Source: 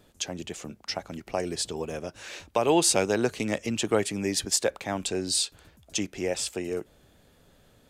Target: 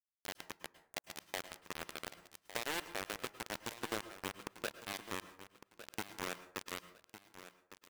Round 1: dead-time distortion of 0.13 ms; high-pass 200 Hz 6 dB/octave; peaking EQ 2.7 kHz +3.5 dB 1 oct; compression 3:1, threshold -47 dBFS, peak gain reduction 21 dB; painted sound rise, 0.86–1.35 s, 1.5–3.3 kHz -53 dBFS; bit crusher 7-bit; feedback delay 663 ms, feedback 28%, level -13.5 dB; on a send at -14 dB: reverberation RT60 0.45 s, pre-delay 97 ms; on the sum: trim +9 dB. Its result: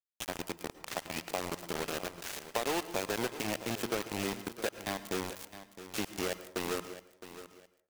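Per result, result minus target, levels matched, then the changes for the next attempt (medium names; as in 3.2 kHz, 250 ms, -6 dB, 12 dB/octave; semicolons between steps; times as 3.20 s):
echo 493 ms early; compression: peak gain reduction -6 dB; dead-time distortion: distortion -4 dB
change: feedback delay 1156 ms, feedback 28%, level -13.5 dB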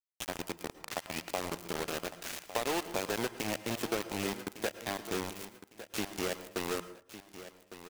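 compression: peak gain reduction -6 dB; dead-time distortion: distortion -4 dB
change: compression 3:1, threshold -55.5 dBFS, peak gain reduction 26.5 dB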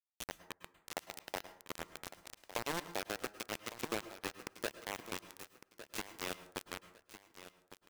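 dead-time distortion: distortion -4 dB
change: dead-time distortion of 0.39 ms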